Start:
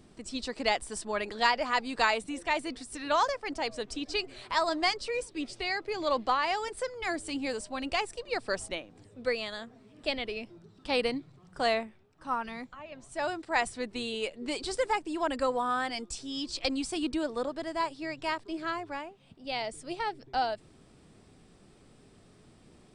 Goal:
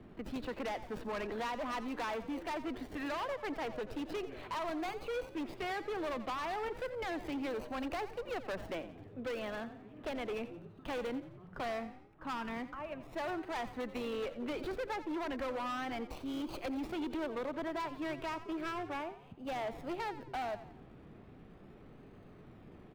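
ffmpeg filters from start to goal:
-filter_complex "[0:a]aemphasis=mode=reproduction:type=50kf,acrossover=split=80|330|1700[a][b][c][d];[a]acompressor=threshold=-51dB:ratio=4[e];[b]acompressor=threshold=-45dB:ratio=4[f];[c]acompressor=threshold=-37dB:ratio=4[g];[d]acompressor=threshold=-46dB:ratio=4[h];[e][f][g][h]amix=inputs=4:normalize=0,acrossover=split=3300[i][j];[j]acrusher=samples=34:mix=1:aa=0.000001:lfo=1:lforange=20.4:lforate=0.35[k];[i][k]amix=inputs=2:normalize=0,asoftclip=type=hard:threshold=-38dB,asplit=5[l][m][n][o][p];[m]adelay=87,afreqshift=36,volume=-14dB[q];[n]adelay=174,afreqshift=72,volume=-21.3dB[r];[o]adelay=261,afreqshift=108,volume=-28.7dB[s];[p]adelay=348,afreqshift=144,volume=-36dB[t];[l][q][r][s][t]amix=inputs=5:normalize=0,volume=3dB"

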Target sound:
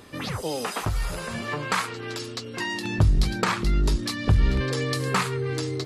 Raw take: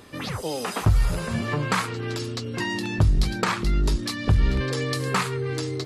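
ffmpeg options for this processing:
-filter_complex "[0:a]asettb=1/sr,asplit=3[a][b][c];[a]atrim=end=0.674[d];[b]atrim=start=0.67:end=2.85,asetpts=PTS-STARTPTS,afade=t=in:d=0.004:c=qsin,afade=t=out:st=2.176:d=0.004:c=qsin,equalizer=f=91:w=0.34:g=-9.5[e];[c]atrim=start=2.846[f];[d][e]acrossfade=d=0.004:c1=hsin:c2=qsin[g];[g][f]acrossfade=d=0.004:c1=qsin:c2=hsin"

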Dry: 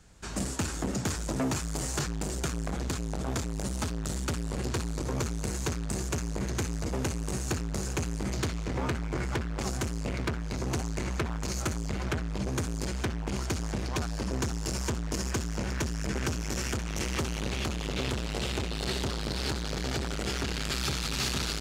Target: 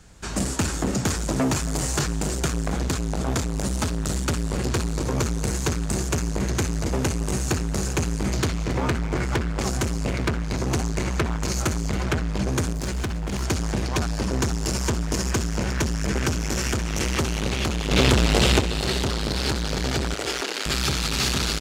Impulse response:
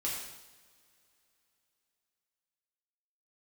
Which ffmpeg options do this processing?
-filter_complex "[0:a]asettb=1/sr,asplit=3[a][b][c];[a]atrim=end=12.734[d];[b]atrim=start=12.73:end=13.43,asetpts=PTS-STARTPTS,afade=t=in:d=0.004:c=qsin,afade=t=out:st=0.696:d=0.004:c=qsin,volume=29.5dB,asoftclip=hard,volume=-29.5dB[e];[c]atrim=start=13.426[f];[d][e]acrossfade=d=0.004:c1=hsin:c2=qsin[g];[g][f]acrossfade=d=0.004:c1=qsin:c2=hsin,asettb=1/sr,asplit=3[h][i][j];[h]atrim=end=17.914[k];[i]atrim=start=17.91:end=18.6,asetpts=PTS-STARTPTS,afade=t=in:d=0.004:c=qsin,afade=t=out:st=0.686:d=0.004:c=qsin,acontrast=78[l];[j]atrim=start=18.596[m];[k][l]acrossfade=d=0.004:c1=hsin:c2=qsin[n];[n][m]acrossfade=d=0.004:c1=qsin:c2=hsin,asettb=1/sr,asplit=3[o][p][q];[o]atrim=end=20.144[r];[p]atrim=start=20.14:end=20.66,asetpts=PTS-STARTPTS,afade=t=in:d=0.004:c=qsin,afade=t=out:st=0.516:d=0.004:c=qsin,highpass=f=330:w=0.5412,highpass=f=330:w=1.3066[s];[q]atrim=start=20.656[t];[r][s]acrossfade=d=0.004:c1=hsin:c2=qsin[u];[u][t]acrossfade=d=0.004:c1=qsin:c2=hsin,aecho=1:1:275:0.178,volume=7dB" -ar 44100 -c:a aac -b:a 160k

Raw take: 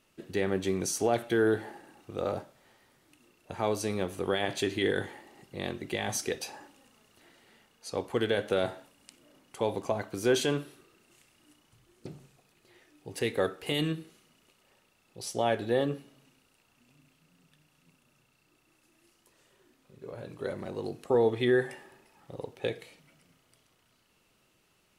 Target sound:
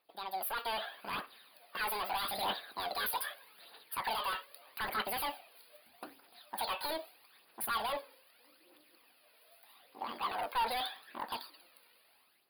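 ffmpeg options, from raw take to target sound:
-af "highpass=f=580:p=1,dynaudnorm=f=540:g=5:m=14.5dB,asoftclip=type=hard:threshold=-26dB,aphaser=in_gain=1:out_gain=1:delay=4.4:decay=0.46:speed=0.4:type=triangular,asuperstop=centerf=3400:order=20:qfactor=1.5,asetrate=88200,aresample=44100,volume=-7.5dB"

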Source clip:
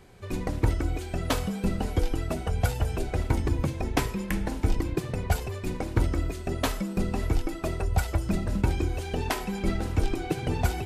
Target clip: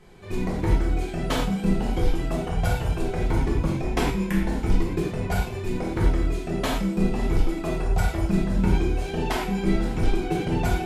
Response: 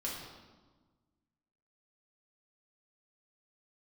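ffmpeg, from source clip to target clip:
-filter_complex "[0:a]highshelf=f=9.4k:g=-6[a];[1:a]atrim=start_sample=2205,atrim=end_sample=3969,asetrate=32193,aresample=44100[b];[a][b]afir=irnorm=-1:irlink=0"

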